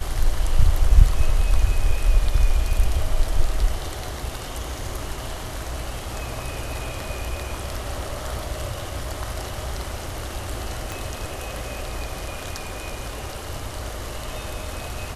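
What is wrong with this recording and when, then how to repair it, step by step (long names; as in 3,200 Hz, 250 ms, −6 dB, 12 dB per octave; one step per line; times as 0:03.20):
0:10.92: click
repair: click removal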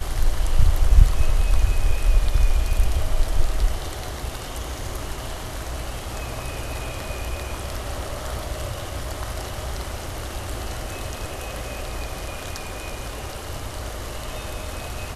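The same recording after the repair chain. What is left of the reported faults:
0:10.92: click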